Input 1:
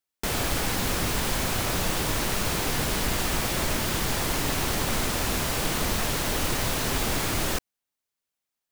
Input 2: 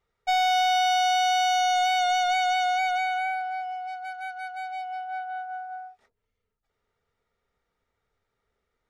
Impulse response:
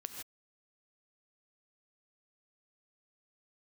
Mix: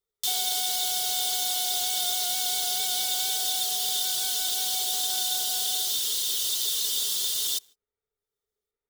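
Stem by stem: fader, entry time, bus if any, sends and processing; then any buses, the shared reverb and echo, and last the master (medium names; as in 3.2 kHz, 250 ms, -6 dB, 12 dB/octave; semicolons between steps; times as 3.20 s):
-0.5 dB, 0.00 s, send -19 dB, steep high-pass 3 kHz 96 dB/octave; reverb removal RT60 0.63 s
-13.5 dB, 0.00 s, no send, compression 3:1, threshold -31 dBFS, peak gain reduction 8.5 dB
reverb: on, pre-delay 3 ms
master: waveshaping leveller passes 2; small resonant body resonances 420/3600 Hz, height 13 dB, ringing for 55 ms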